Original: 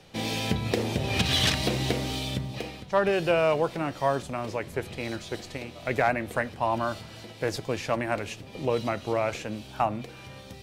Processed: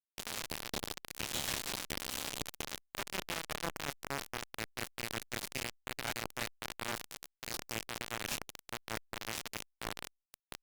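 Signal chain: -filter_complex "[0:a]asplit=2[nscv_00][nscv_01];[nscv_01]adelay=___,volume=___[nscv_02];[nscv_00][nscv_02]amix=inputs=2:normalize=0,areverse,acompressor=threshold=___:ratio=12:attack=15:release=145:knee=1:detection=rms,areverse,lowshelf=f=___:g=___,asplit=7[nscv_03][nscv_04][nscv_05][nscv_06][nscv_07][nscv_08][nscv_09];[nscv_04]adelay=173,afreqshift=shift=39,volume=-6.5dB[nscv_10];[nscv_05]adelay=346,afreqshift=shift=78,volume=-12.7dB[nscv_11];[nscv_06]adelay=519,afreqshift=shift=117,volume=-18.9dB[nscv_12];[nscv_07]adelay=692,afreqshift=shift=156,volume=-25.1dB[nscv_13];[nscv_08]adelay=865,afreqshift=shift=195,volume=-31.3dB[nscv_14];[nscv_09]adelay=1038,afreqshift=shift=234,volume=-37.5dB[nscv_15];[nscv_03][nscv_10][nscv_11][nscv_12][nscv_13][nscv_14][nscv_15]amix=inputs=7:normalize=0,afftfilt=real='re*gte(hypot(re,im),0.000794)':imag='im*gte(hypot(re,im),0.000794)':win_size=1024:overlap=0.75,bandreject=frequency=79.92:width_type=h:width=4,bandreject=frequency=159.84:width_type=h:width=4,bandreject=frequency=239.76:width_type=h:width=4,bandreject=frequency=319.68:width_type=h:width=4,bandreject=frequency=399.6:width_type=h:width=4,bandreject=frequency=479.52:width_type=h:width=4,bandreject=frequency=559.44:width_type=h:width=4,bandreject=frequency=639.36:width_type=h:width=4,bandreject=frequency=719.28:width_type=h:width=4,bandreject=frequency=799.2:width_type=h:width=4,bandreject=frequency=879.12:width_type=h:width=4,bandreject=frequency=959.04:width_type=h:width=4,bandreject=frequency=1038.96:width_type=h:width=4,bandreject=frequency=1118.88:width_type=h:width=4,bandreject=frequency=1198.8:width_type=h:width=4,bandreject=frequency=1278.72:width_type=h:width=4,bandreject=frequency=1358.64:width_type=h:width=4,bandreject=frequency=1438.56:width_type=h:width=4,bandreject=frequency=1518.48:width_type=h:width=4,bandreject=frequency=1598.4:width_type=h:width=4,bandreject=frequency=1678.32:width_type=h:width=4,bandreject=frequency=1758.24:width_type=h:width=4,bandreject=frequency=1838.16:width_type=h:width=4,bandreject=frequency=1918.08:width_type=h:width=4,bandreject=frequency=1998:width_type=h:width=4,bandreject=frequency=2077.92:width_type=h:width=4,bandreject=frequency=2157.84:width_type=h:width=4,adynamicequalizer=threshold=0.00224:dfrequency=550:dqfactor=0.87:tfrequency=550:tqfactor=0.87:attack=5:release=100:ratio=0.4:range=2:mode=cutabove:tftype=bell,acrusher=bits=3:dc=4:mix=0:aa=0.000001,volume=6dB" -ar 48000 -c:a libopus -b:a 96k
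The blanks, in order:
27, -5dB, -37dB, 120, -8.5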